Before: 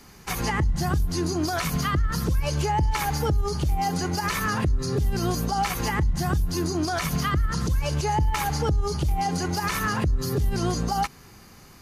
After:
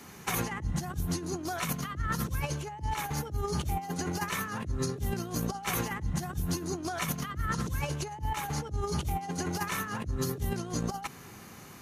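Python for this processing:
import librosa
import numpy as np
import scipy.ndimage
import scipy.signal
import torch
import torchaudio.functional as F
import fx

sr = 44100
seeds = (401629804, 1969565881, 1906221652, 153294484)

y = scipy.signal.sosfilt(scipy.signal.butter(2, 100.0, 'highpass', fs=sr, output='sos'), x)
y = fx.peak_eq(y, sr, hz=4800.0, db=-9.0, octaves=0.23)
y = fx.over_compress(y, sr, threshold_db=-30.0, ratio=-0.5)
y = y * 10.0 ** (-2.0 / 20.0)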